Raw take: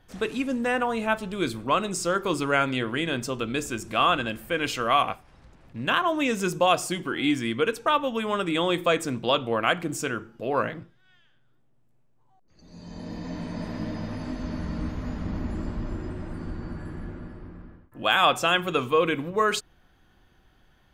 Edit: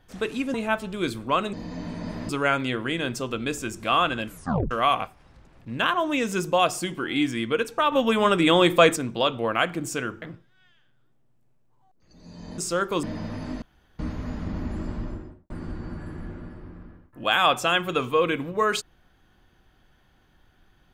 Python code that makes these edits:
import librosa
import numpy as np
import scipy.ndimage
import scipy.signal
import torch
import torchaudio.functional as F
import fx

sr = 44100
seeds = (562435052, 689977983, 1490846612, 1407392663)

y = fx.studio_fade_out(x, sr, start_s=15.76, length_s=0.53)
y = fx.edit(y, sr, fx.cut(start_s=0.54, length_s=0.39),
    fx.swap(start_s=1.92, length_s=0.45, other_s=13.06, other_length_s=0.76),
    fx.tape_stop(start_s=4.35, length_s=0.44),
    fx.clip_gain(start_s=8.0, length_s=1.04, db=6.5),
    fx.cut(start_s=10.3, length_s=0.4),
    fx.room_tone_fill(start_s=14.41, length_s=0.37), tone=tone)